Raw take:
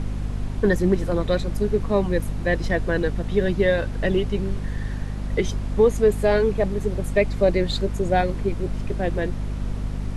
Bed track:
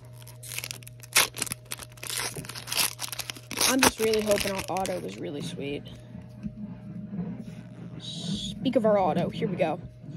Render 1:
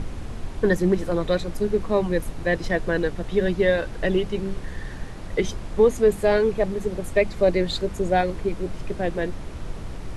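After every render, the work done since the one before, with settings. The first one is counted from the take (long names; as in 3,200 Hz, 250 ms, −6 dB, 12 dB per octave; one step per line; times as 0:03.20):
mains-hum notches 50/100/150/200/250 Hz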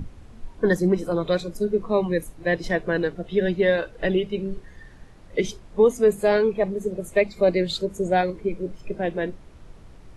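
noise reduction from a noise print 13 dB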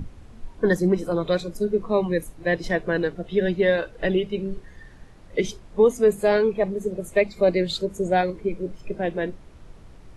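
no processing that can be heard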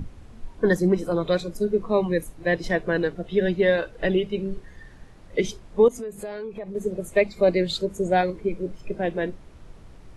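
0:05.88–0:06.75: downward compressor, threshold −31 dBFS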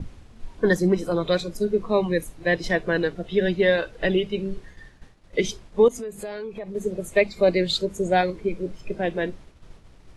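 parametric band 4,200 Hz +4.5 dB 2.3 octaves
downward expander −39 dBFS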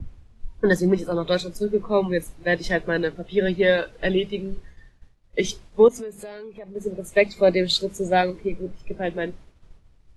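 multiband upward and downward expander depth 40%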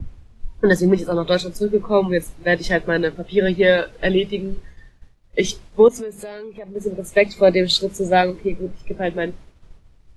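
level +4 dB
brickwall limiter −3 dBFS, peak gain reduction 2 dB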